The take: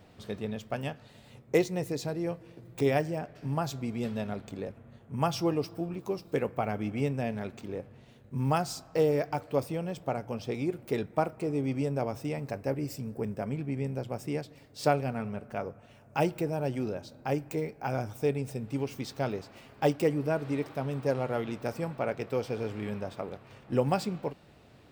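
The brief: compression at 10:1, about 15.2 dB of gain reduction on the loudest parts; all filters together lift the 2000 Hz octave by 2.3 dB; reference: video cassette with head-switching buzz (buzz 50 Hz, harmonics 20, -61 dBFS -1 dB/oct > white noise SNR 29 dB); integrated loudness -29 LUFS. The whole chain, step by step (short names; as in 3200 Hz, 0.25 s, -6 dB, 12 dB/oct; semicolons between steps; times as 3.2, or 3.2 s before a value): bell 2000 Hz +3 dB; compressor 10:1, threshold -35 dBFS; buzz 50 Hz, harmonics 20, -61 dBFS -1 dB/oct; white noise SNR 29 dB; gain +12 dB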